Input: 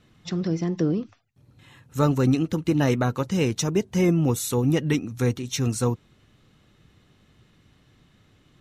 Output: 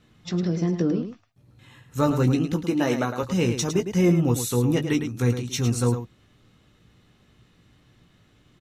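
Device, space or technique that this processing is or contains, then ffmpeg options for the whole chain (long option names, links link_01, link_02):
slapback doubling: -filter_complex "[0:a]asettb=1/sr,asplit=3[link_01][link_02][link_03];[link_01]atrim=end=2.624[link_04];[link_02]atrim=start=2.62:end=3.23,asetpts=PTS-STARTPTS,afade=type=in:duration=0.004:curve=qsin,afade=type=out:start_time=0.606:duration=0.004:curve=qsin,highpass=220[link_05];[link_03]atrim=start=3.226[link_06];[link_04][link_05]acrossfade=duration=0.004:curve1=hsin:curve2=qsin[link_07];[link_07][link_06]acrossfade=duration=0.004:curve1=qsin:curve2=hsin,asplit=3[link_08][link_09][link_10];[link_09]adelay=17,volume=-7dB[link_11];[link_10]adelay=107,volume=-8.5dB[link_12];[link_08][link_11][link_12]amix=inputs=3:normalize=0,volume=-1dB"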